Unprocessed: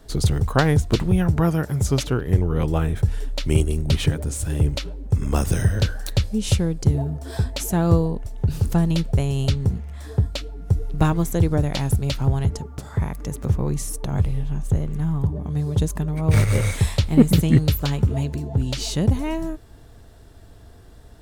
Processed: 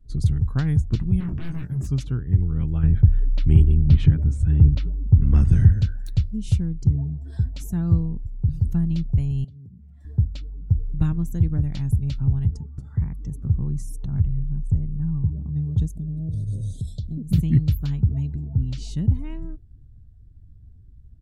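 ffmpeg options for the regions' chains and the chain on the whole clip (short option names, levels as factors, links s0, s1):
-filter_complex "[0:a]asettb=1/sr,asplit=3[s0][s1][s2];[s0]atrim=end=1.204[s3];[s1]atrim=start=1.2:end=1.87,asetpts=PTS-STARTPTS,afade=t=in:d=0.004:c=qsin,afade=t=out:st=0.666:d=0.004:c=qsin,aeval=exprs='0.0944*(abs(mod(val(0)/0.0944+3,4)-2)-1)':c=same,asplit=2[s4][s5];[s5]adelay=23,volume=0.562[s6];[s4][s6]amix=inputs=2:normalize=0,atrim=end_sample=29547[s7];[s2]atrim=start=1.866[s8];[s3][s7]acrossfade=d=0.004:c1=hsin:c2=qsin[s9];[s9][s8]acrossfade=d=0.004:c1=qsin:c2=hsin,asettb=1/sr,asplit=3[s10][s11][s12];[s10]atrim=end=2.834[s13];[s11]atrim=start=2.83:end=5.73,asetpts=PTS-STARTPTS,afade=t=in:d=0.004:c=qsin,afade=t=out:st=2.896:d=0.004:c=qsin,aemphasis=mode=reproduction:type=75fm,acontrast=65[s14];[s12]atrim=start=5.726[s15];[s13][s14]acrossfade=d=0.004:c1=hsin:c2=qsin[s16];[s16][s15]acrossfade=d=0.004:c1=qsin:c2=hsin,asettb=1/sr,asplit=3[s17][s18][s19];[s17]atrim=end=9.444[s20];[s18]atrim=start=9.44:end=10.05,asetpts=PTS-STARTPTS,afade=t=in:d=0.004:c=qsin,afade=t=out:st=0.606:d=0.004:c=qsin,highpass=150,acompressor=threshold=0.0141:ratio=10:attack=3.2:release=140:knee=1:detection=peak[s21];[s19]atrim=start=10.046[s22];[s20][s21]acrossfade=d=0.004:c1=hsin:c2=qsin[s23];[s23][s22]acrossfade=d=0.004:c1=qsin:c2=hsin,asettb=1/sr,asplit=3[s24][s25][s26];[s24]atrim=end=15.874[s27];[s25]atrim=start=15.87:end=17.32,asetpts=PTS-STARTPTS,afade=t=in:d=0.004:c=qsin,afade=t=out:st=1.446:d=0.004:c=qsin,lowshelf=f=81:g=-7.5,acompressor=threshold=0.0891:ratio=16:attack=3.2:release=140:knee=1:detection=peak,asuperstop=centerf=1500:order=12:qfactor=0.59[s28];[s26]atrim=start=17.316[s29];[s27][s28]acrossfade=d=0.004:c1=hsin:c2=qsin[s30];[s30][s29]acrossfade=d=0.004:c1=qsin:c2=hsin,afftdn=nr=17:nf=-42,firequalizer=gain_entry='entry(120,0);entry(510,-22);entry(1500,-14)':delay=0.05:min_phase=1"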